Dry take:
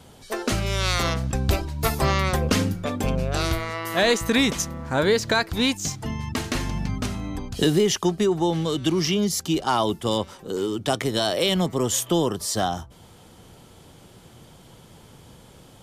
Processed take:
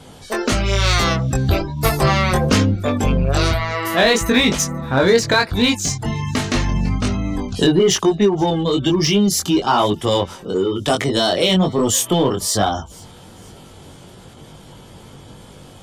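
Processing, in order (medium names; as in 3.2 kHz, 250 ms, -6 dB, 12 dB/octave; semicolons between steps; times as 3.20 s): spectral gate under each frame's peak -30 dB strong; chorus 1.1 Hz, delay 19.5 ms, depth 2.9 ms; in parallel at -5.5 dB: overload inside the chain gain 26.5 dB; on the sum: feedback echo behind a high-pass 484 ms, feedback 43%, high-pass 3.6 kHz, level -23 dB; trim +7 dB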